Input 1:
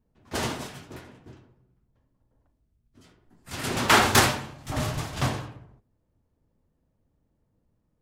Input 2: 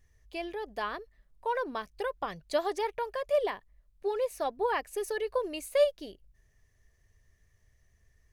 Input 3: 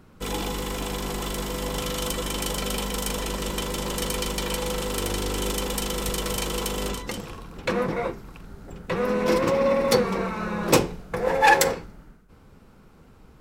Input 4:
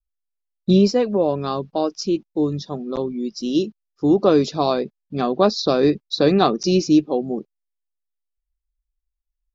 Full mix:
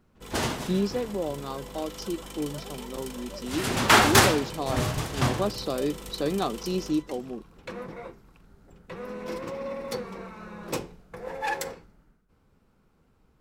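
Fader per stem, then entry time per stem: +1.0, -17.5, -13.0, -11.5 dB; 0.00, 0.00, 0.00, 0.00 s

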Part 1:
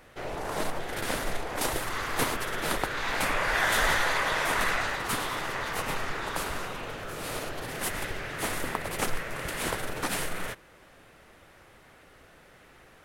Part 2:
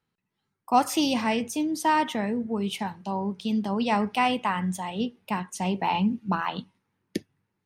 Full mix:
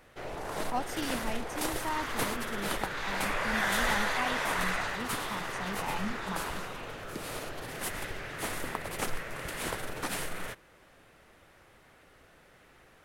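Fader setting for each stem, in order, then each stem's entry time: -4.0, -12.5 dB; 0.00, 0.00 s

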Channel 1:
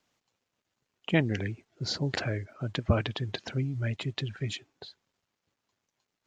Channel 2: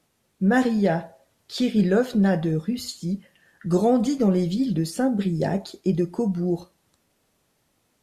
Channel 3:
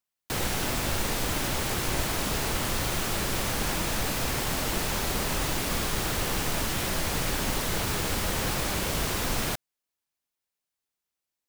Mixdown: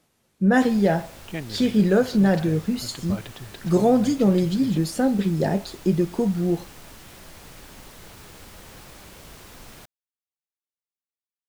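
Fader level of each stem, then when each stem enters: -7.5, +1.5, -16.0 dB; 0.20, 0.00, 0.30 s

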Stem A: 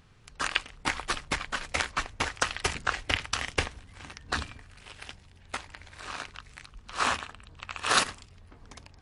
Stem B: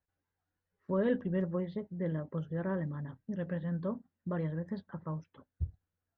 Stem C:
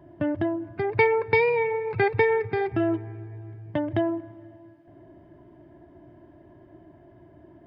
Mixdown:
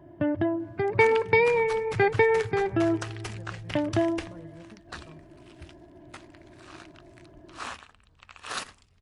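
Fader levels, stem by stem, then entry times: -10.5, -12.5, 0.0 dB; 0.60, 0.00, 0.00 s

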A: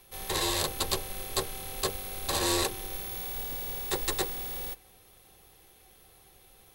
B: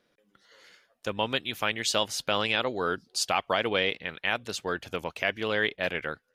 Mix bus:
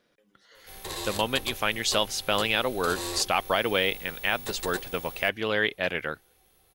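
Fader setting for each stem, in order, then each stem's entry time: -6.0, +1.5 dB; 0.55, 0.00 s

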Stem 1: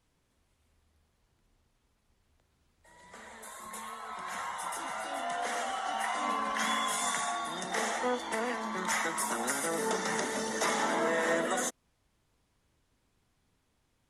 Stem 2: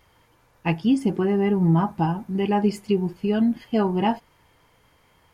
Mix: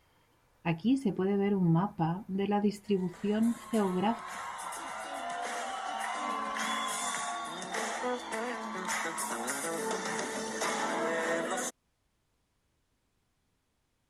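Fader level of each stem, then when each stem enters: -2.5, -8.0 dB; 0.00, 0.00 s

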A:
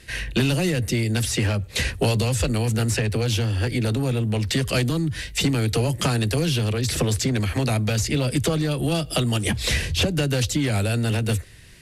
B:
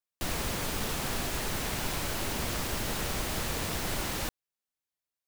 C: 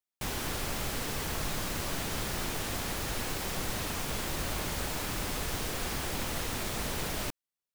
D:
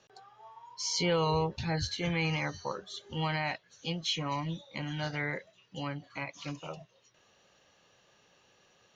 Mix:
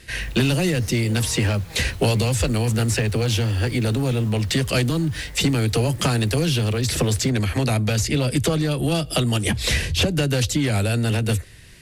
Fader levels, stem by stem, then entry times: +1.5, -17.5, -15.0, -13.5 dB; 0.00, 0.00, 0.00, 0.00 s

